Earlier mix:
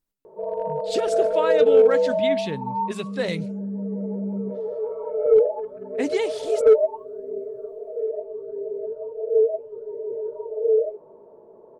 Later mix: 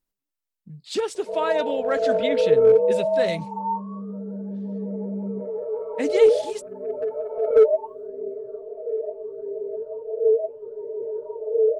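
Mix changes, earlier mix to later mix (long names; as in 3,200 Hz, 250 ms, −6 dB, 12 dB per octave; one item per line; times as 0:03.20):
background: entry +0.90 s
master: add parametric band 140 Hz −2 dB 1.8 octaves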